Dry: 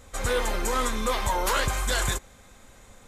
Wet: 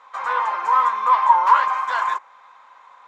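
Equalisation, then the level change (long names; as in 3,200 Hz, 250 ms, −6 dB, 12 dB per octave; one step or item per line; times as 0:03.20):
dynamic equaliser 3,800 Hz, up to −6 dB, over −46 dBFS, Q 1.7
high-pass with resonance 1,000 Hz, resonance Q 8.4
high-frequency loss of the air 240 metres
+2.0 dB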